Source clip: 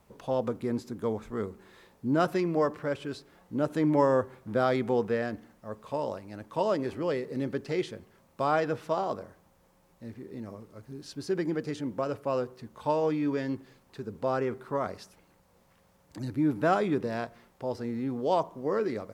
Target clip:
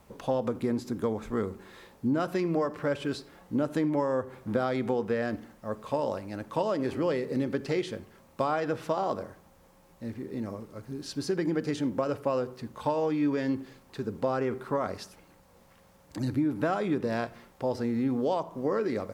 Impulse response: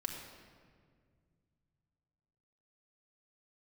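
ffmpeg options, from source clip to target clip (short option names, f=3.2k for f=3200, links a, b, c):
-filter_complex "[0:a]acompressor=threshold=-29dB:ratio=10,asplit=2[a][b];[1:a]atrim=start_sample=2205,atrim=end_sample=4410[c];[b][c]afir=irnorm=-1:irlink=0,volume=-9dB[d];[a][d]amix=inputs=2:normalize=0,volume=3dB"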